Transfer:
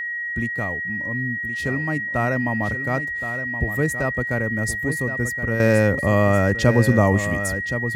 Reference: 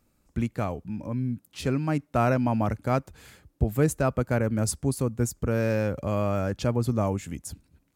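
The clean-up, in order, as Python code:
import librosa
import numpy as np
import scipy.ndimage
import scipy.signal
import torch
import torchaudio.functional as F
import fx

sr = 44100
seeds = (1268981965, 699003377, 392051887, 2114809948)

y = fx.notch(x, sr, hz=1900.0, q=30.0)
y = fx.fix_echo_inverse(y, sr, delay_ms=1071, level_db=-10.0)
y = fx.gain(y, sr, db=fx.steps((0.0, 0.0), (5.6, -8.5)))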